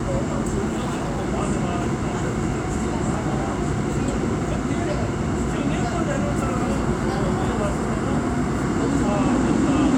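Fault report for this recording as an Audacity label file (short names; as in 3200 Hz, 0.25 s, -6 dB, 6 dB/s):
0.680000	1.280000	clipped -21 dBFS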